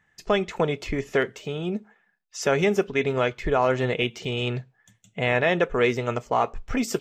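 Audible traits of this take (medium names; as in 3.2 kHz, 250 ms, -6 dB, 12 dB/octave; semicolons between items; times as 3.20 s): noise floor -69 dBFS; spectral tilt -4.0 dB/octave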